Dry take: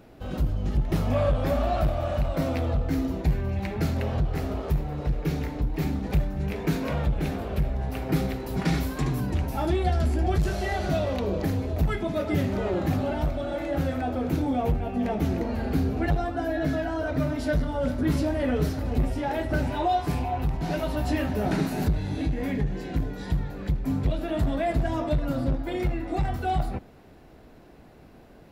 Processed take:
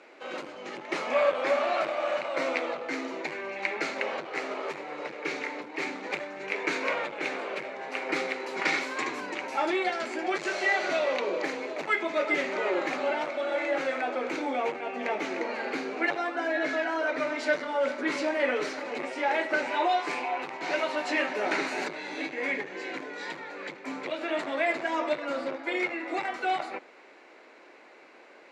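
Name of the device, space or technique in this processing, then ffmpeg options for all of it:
phone speaker on a table: -af "highpass=f=410:w=0.5412,highpass=f=410:w=1.3066,equalizer=f=440:t=q:w=4:g=-5,equalizer=f=700:t=q:w=4:g=-8,equalizer=f=2200:t=q:w=4:g=8,equalizer=f=3400:t=q:w=4:g=-4,equalizer=f=5300:t=q:w=4:g=-5,lowpass=f=6900:w=0.5412,lowpass=f=6900:w=1.3066,volume=1.88"

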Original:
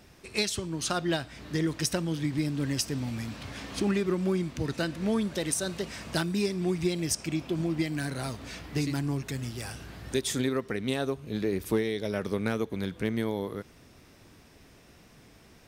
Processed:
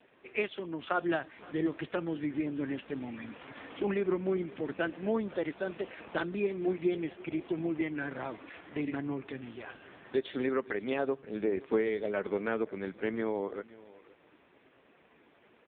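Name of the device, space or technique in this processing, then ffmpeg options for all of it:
satellite phone: -filter_complex "[0:a]asettb=1/sr,asplit=3[s0][s1][s2];[s0]atrim=end=6.544[s3];[s1]atrim=start=6.54:end=6.94,asetpts=PTS-STARTPTS,afade=t=in:d=0.004:c=qsin,afade=t=out:st=0.396:d=0.004:c=qsin,asplit=2[s4][s5];[s5]adelay=20,volume=0.299[s6];[s4][s6]amix=inputs=2:normalize=0,atrim=end_sample=17640[s7];[s2]atrim=start=6.936[s8];[s3][s7]acrossfade=d=0.004:c1=hsin:c2=qsin[s9];[s9][s8]acrossfade=d=0.004:c1=qsin:c2=hsin,highpass=320,lowpass=3000,aecho=1:1:522:0.1,volume=1.19" -ar 8000 -c:a libopencore_amrnb -b:a 5150

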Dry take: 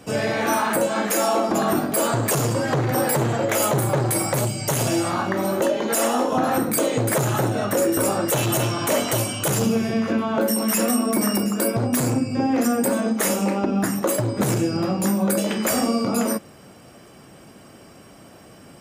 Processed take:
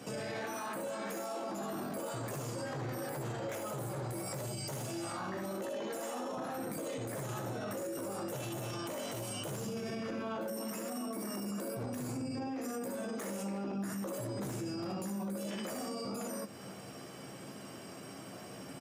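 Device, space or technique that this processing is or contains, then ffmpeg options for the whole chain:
broadcast voice chain: -af "highpass=f=100:w=0.5412,highpass=f=100:w=1.3066,aecho=1:1:15|65|76:0.501|0.422|0.596,deesser=0.4,acompressor=threshold=0.0355:ratio=4,equalizer=f=5700:t=o:w=0.77:g=2,alimiter=level_in=1.5:limit=0.0631:level=0:latency=1:release=13,volume=0.668,volume=0.631"

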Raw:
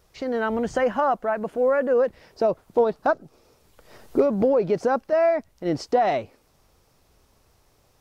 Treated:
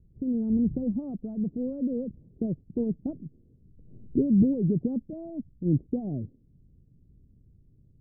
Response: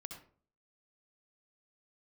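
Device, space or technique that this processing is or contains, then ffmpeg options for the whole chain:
the neighbour's flat through the wall: -af "lowpass=f=270:w=0.5412,lowpass=f=270:w=1.3066,equalizer=f=140:t=o:w=0.91:g=5,volume=1.68"

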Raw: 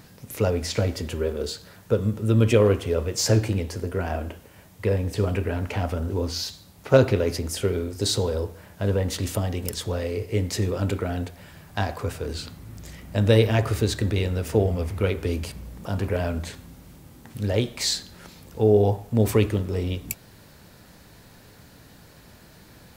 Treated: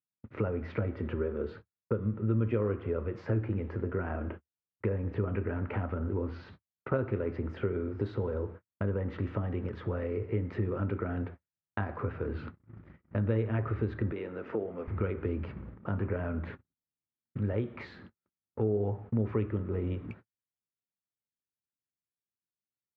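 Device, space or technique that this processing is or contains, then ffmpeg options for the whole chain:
bass amplifier: -filter_complex "[0:a]agate=range=0.00112:threshold=0.0141:ratio=16:detection=peak,acompressor=threshold=0.0224:ratio=3,highpass=75,equalizer=f=75:t=q:w=4:g=3,equalizer=f=110:t=q:w=4:g=4,equalizer=f=220:t=q:w=4:g=4,equalizer=f=350:t=q:w=4:g=5,equalizer=f=710:t=q:w=4:g=-4,equalizer=f=1300:t=q:w=4:g=6,lowpass=f=2100:w=0.5412,lowpass=f=2100:w=1.3066,asettb=1/sr,asplit=3[s0][s1][s2];[s0]atrim=end=14.124[s3];[s1]atrim=start=14.12:end=14.88,asetpts=PTS-STARTPTS,afade=t=in:d=0.004:c=qsin,afade=t=out:st=0.756:d=0.004:c=qsin,highpass=280[s4];[s2]atrim=start=14.876[s5];[s3][s4]acrossfade=d=0.004:c1=hsin:c2=qsin[s6];[s6][s5]acrossfade=d=0.004:c1=qsin:c2=hsin"

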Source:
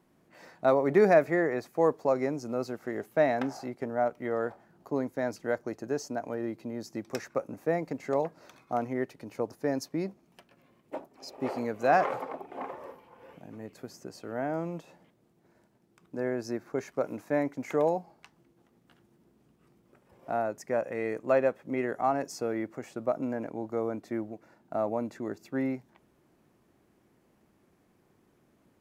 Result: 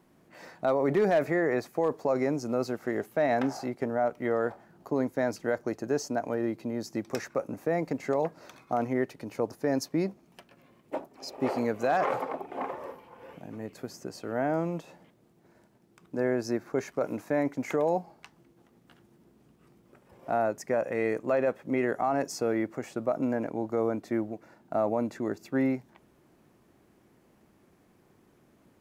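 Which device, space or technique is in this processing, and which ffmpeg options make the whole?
clipper into limiter: -af "asoftclip=type=hard:threshold=0.2,alimiter=limit=0.0841:level=0:latency=1:release=27,volume=1.58"

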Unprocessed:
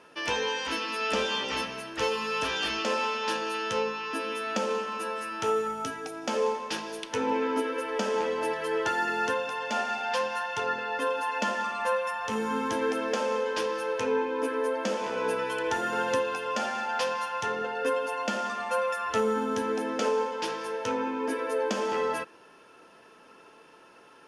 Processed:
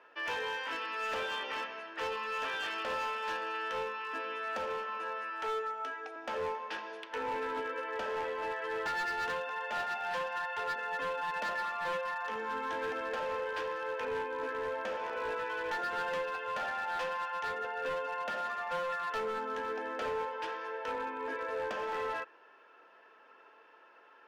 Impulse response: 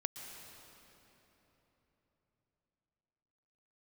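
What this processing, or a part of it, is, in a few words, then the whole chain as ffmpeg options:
megaphone: -filter_complex "[0:a]asettb=1/sr,asplit=3[s0][s1][s2];[s0]atrim=end=5.304[s3];[s1]atrim=start=5.3:end=6.16,asetpts=PTS-STARTPTS,afade=t=in:d=0.004:c=qsin,afade=t=out:st=0.856:d=0.004:c=qsin,highpass=f=290:w=0.5412,highpass=f=290:w=1.3066[s4];[s2]atrim=start=6.156[s5];[s3][s4]acrossfade=d=0.004:c1=hsin:c2=qsin[s6];[s6][s5]acrossfade=d=0.004:c1=qsin:c2=hsin,highpass=500,lowpass=2600,equalizer=f=1700:t=o:w=0.34:g=4,asoftclip=type=hard:threshold=0.0447,volume=0.631"

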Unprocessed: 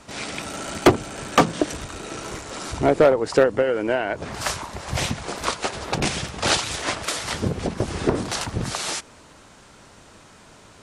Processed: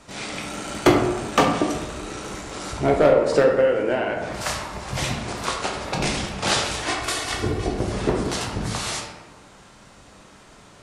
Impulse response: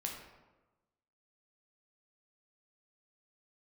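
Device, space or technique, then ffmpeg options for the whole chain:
bathroom: -filter_complex "[0:a]asettb=1/sr,asplit=3[s0][s1][s2];[s0]atrim=end=6.884[s3];[s1]atrim=start=6.88:end=7.73,asetpts=PTS-STARTPTS,afade=t=in:d=0.004:c=qsin,afade=t=out:st=0.846:d=0.004:c=qsin,aecho=1:1:2.7:0.65,atrim=end_sample=37485[s4];[s2]atrim=start=7.726[s5];[s3][s4]acrossfade=d=0.004:c1=hsin:c2=qsin[s6];[s6][s5]acrossfade=d=0.004:c1=qsin:c2=hsin[s7];[1:a]atrim=start_sample=2205[s8];[s7][s8]afir=irnorm=-1:irlink=0"

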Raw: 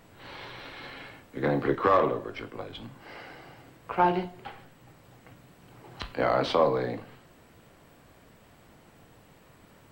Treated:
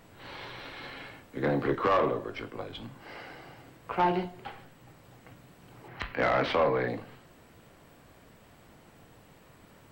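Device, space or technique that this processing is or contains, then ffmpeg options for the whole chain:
saturation between pre-emphasis and de-emphasis: -filter_complex "[0:a]asettb=1/sr,asplit=3[s0][s1][s2];[s0]atrim=end=5.884[s3];[s1]atrim=start=5.88:end=6.88,asetpts=PTS-STARTPTS,afade=t=in:d=0.004:c=qsin,afade=t=out:st=0.996:d=0.004:c=qsin,equalizer=f=2000:t=o:w=1:g=10,equalizer=f=4000:t=o:w=1:g=-4,equalizer=f=8000:t=o:w=1:g=-11[s4];[s2]atrim=start=6.876[s5];[s3][s4]acrossfade=d=0.004:c1=hsin:c2=qsin[s6];[s6][s5]acrossfade=d=0.004:c1=qsin:c2=hsin,highshelf=f=6200:g=7.5,asoftclip=type=tanh:threshold=0.126,highshelf=f=6200:g=-7.5"

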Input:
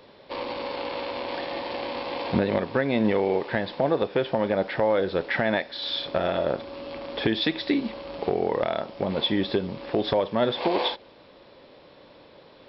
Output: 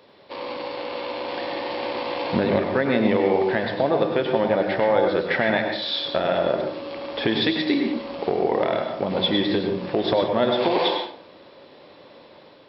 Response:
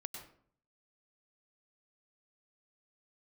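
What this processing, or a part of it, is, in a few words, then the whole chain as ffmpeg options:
far laptop microphone: -filter_complex "[1:a]atrim=start_sample=2205[s0];[0:a][s0]afir=irnorm=-1:irlink=0,highpass=f=140:p=1,dynaudnorm=f=890:g=3:m=1.5,volume=1.41"

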